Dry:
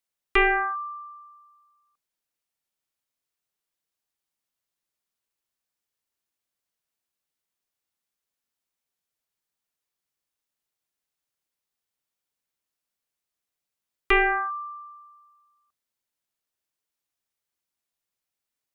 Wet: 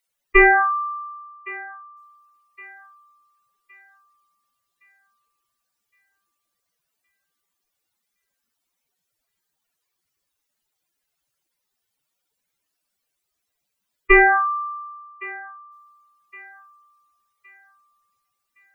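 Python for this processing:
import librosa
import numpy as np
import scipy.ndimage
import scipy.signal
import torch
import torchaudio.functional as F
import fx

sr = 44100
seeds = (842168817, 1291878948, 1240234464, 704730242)

p1 = fx.spec_expand(x, sr, power=2.7)
p2 = p1 + fx.echo_thinned(p1, sr, ms=1115, feedback_pct=43, hz=1000.0, wet_db=-18.0, dry=0)
y = p2 * librosa.db_to_amplitude(8.0)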